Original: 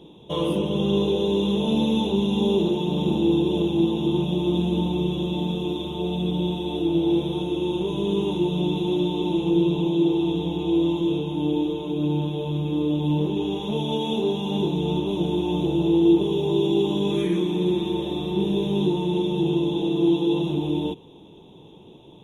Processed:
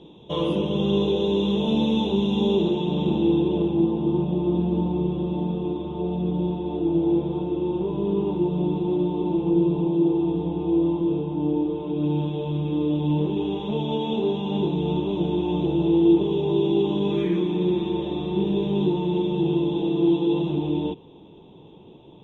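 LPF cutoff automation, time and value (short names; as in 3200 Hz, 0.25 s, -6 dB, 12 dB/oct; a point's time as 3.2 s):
2.47 s 5300 Hz
3.28 s 3000 Hz
3.92 s 1500 Hz
11.65 s 1500 Hz
12.18 s 3000 Hz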